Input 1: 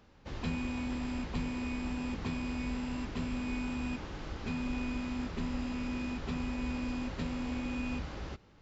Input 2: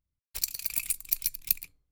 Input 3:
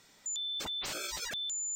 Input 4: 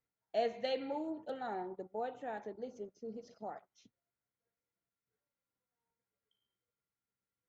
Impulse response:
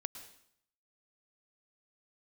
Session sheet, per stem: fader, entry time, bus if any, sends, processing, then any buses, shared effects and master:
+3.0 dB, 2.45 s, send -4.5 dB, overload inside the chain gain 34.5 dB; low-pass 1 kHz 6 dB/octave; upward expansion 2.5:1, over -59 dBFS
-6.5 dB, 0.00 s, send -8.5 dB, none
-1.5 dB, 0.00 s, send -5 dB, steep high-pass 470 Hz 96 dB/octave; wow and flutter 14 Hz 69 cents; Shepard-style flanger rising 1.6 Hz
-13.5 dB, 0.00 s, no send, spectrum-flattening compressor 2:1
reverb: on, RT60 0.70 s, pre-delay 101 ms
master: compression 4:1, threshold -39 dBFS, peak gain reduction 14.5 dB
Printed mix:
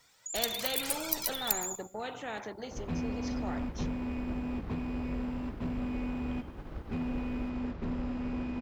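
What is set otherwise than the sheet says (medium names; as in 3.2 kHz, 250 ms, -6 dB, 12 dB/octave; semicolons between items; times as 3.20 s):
stem 4 -13.5 dB -> -1.5 dB; master: missing compression 4:1, threshold -39 dBFS, peak gain reduction 14.5 dB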